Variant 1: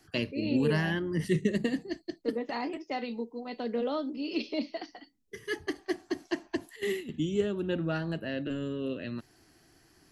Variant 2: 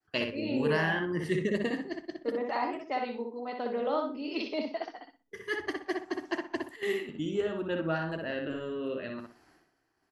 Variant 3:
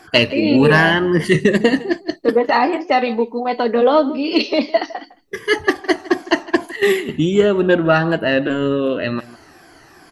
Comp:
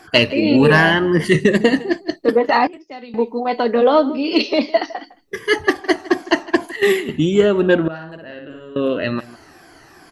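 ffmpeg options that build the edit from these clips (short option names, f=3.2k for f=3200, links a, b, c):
-filter_complex "[2:a]asplit=3[a][b][c];[a]atrim=end=2.672[d];[0:a]atrim=start=2.668:end=3.142[e];[b]atrim=start=3.138:end=7.882[f];[1:a]atrim=start=7.878:end=8.762[g];[c]atrim=start=8.758[h];[d][e]acrossfade=d=0.004:c1=hsin:c2=hsin[i];[i][f]acrossfade=d=0.004:c1=hsin:c2=hsin[j];[j][g]acrossfade=d=0.004:c1=hsin:c2=hsin[k];[k][h]acrossfade=d=0.004:c1=hsin:c2=hsin"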